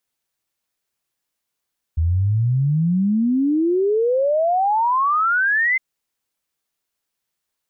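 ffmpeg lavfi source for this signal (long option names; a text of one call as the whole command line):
ffmpeg -f lavfi -i "aevalsrc='0.178*clip(min(t,3.81-t)/0.01,0,1)*sin(2*PI*78*3.81/log(2100/78)*(exp(log(2100/78)*t/3.81)-1))':duration=3.81:sample_rate=44100" out.wav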